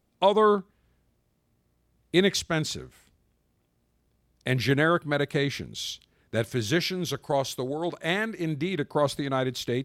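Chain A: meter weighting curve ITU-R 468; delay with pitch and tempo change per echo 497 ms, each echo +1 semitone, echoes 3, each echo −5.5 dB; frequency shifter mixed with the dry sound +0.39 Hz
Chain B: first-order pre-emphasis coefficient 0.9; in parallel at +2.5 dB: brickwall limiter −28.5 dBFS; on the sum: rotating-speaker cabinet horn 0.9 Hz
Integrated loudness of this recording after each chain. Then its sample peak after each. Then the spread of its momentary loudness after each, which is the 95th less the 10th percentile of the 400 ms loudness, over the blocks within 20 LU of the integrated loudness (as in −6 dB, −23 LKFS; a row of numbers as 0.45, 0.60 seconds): −27.0, −36.5 LKFS; −8.0, −17.5 dBFS; 13, 8 LU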